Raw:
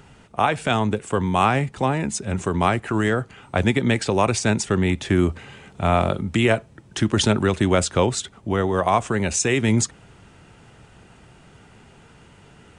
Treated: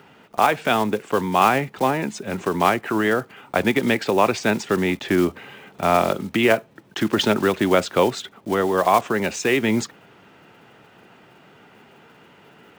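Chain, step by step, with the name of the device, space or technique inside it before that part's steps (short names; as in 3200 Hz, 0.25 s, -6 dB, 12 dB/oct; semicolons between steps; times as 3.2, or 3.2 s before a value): early digital voice recorder (BPF 230–3800 Hz; block floating point 5-bit); gain +2.5 dB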